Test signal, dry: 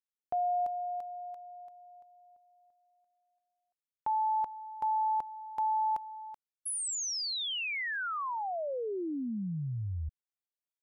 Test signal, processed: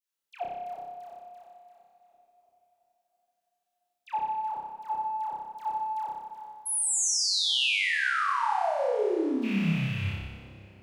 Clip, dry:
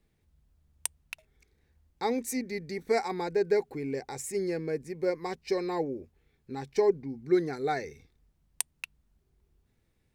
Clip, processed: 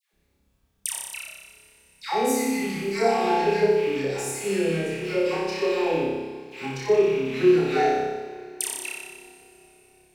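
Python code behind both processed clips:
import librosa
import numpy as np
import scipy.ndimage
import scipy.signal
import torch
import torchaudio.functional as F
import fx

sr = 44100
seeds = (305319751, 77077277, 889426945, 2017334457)

p1 = fx.rattle_buzz(x, sr, strikes_db=-45.0, level_db=-32.0)
p2 = fx.dispersion(p1, sr, late='lows', ms=131.0, hz=960.0)
p3 = 10.0 ** (-22.0 / 20.0) * np.tanh(p2 / 10.0 ** (-22.0 / 20.0))
p4 = p2 + (p3 * librosa.db_to_amplitude(-12.0))
p5 = fx.low_shelf(p4, sr, hz=90.0, db=-6.0)
p6 = p5 + fx.room_flutter(p5, sr, wall_m=5.2, rt60_s=1.2, dry=0)
y = fx.rev_double_slope(p6, sr, seeds[0], early_s=0.52, late_s=4.6, knee_db=-18, drr_db=6.0)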